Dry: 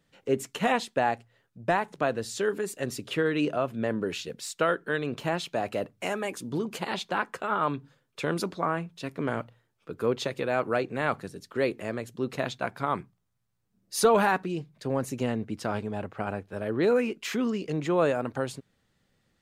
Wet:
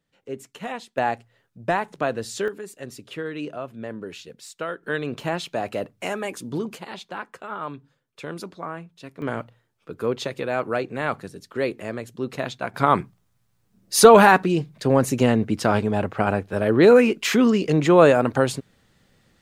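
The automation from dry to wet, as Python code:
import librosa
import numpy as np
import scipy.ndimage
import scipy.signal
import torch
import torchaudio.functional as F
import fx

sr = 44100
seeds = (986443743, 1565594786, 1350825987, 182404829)

y = fx.gain(x, sr, db=fx.steps((0.0, -7.0), (0.98, 2.5), (2.48, -5.0), (4.83, 2.5), (6.75, -5.0), (9.22, 2.0), (12.74, 10.5)))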